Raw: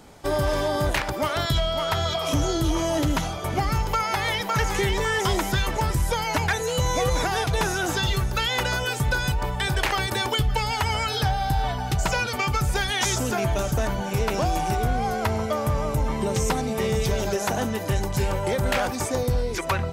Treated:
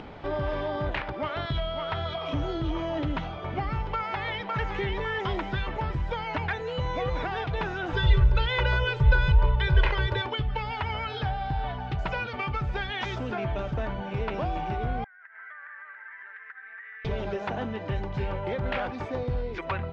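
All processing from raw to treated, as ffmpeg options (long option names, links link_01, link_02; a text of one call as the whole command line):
ffmpeg -i in.wav -filter_complex "[0:a]asettb=1/sr,asplit=3[link_01][link_02][link_03];[link_01]atrim=end=7.934[link_04];[link_02]atrim=start=7.93:end=10.22,asetpts=PTS-STARTPTS,afade=type=in:duration=0.004:curve=qsin,afade=type=out:start_time=2.286:duration=0.004:curve=qsin,lowshelf=frequency=110:gain=11,aecho=1:1:2:0.9,atrim=end_sample=100989[link_05];[link_03]atrim=start=10.216[link_06];[link_04][link_05]acrossfade=duration=0.004:curve1=hsin:curve2=qsin[link_07];[link_07][link_06]acrossfade=duration=0.004:curve1=qsin:curve2=hsin,asettb=1/sr,asplit=3[link_08][link_09][link_10];[link_08]atrim=end=15.044[link_11];[link_09]atrim=start=15.04:end=17.05,asetpts=PTS-STARTPTS,afade=type=in:duration=0.004:curve=qsin,afade=type=out:start_time=2.006:duration=0.004:curve=qsin,asuperpass=centerf=1700:order=4:qfactor=4.6,acompressor=threshold=-45dB:ratio=6:attack=3.2:release=140:knee=1:detection=peak[link_12];[link_10]atrim=start=17.046[link_13];[link_11][link_12]acrossfade=duration=0.004:curve1=hsin:curve2=qsin[link_14];[link_14][link_13]acrossfade=duration=0.004:curve1=qsin:curve2=hsin,lowpass=frequency=3300:width=0.5412,lowpass=frequency=3300:width=1.3066,acompressor=mode=upward:threshold=-26dB:ratio=2.5,volume=-6dB" out.wav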